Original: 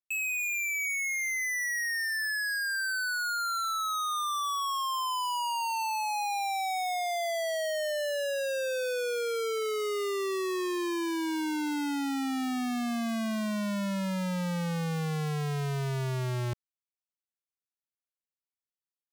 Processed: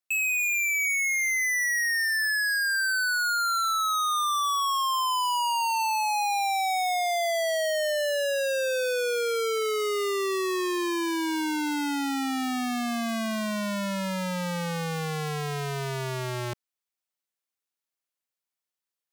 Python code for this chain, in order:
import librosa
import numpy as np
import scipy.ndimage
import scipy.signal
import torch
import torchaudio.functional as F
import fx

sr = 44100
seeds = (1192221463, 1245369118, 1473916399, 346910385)

y = fx.highpass(x, sr, hz=320.0, slope=6)
y = y * librosa.db_to_amplitude(5.5)